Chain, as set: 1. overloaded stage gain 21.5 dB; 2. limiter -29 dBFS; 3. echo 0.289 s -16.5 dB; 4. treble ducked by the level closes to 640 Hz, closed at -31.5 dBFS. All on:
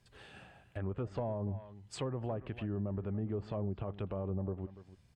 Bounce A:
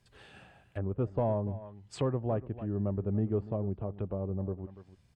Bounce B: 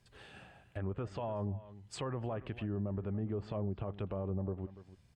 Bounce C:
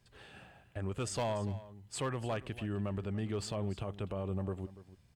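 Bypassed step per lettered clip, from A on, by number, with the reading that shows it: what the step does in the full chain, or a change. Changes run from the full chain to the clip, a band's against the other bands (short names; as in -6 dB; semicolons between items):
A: 2, mean gain reduction 3.0 dB; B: 1, distortion -17 dB; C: 4, 8 kHz band +9.0 dB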